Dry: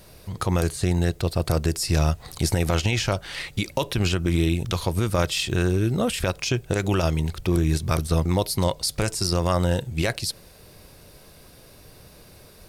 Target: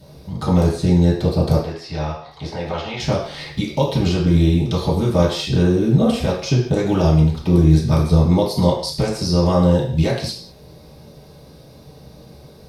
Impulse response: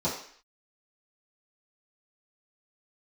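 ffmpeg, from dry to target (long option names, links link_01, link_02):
-filter_complex "[0:a]asettb=1/sr,asplit=3[link_01][link_02][link_03];[link_01]atrim=end=1.564[link_04];[link_02]atrim=start=1.56:end=3,asetpts=PTS-STARTPTS,afade=type=in:duration=0.004:curve=qsin,afade=type=out:start_time=1.436:duration=0.004:curve=qsin,acrossover=split=550 4100:gain=0.178 1 0.0708[link_05][link_06][link_07];[link_05][link_06][link_07]amix=inputs=3:normalize=0[link_08];[link_03]atrim=start=2.996[link_09];[link_04][link_08]acrossfade=duration=0.004:curve1=hsin:curve2=qsin[link_10];[link_10][link_09]acrossfade=duration=0.004:curve1=qsin:curve2=hsin[link_11];[1:a]atrim=start_sample=2205,afade=type=out:start_time=0.24:duration=0.01,atrim=end_sample=11025,asetrate=38808,aresample=44100[link_12];[link_11][link_12]afir=irnorm=-1:irlink=0,volume=-7.5dB"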